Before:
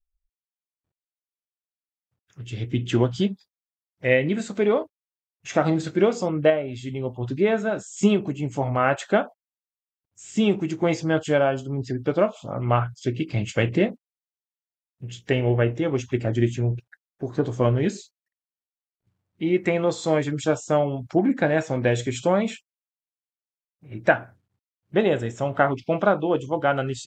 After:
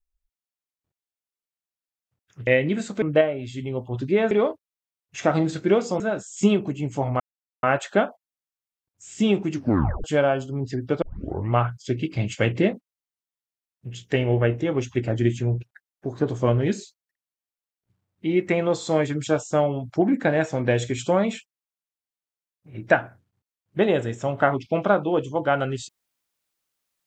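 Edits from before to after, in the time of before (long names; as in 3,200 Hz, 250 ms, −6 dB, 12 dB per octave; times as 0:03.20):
0:02.47–0:04.07: remove
0:06.31–0:07.60: move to 0:04.62
0:08.80: splice in silence 0.43 s
0:10.70: tape stop 0.51 s
0:12.19: tape start 0.50 s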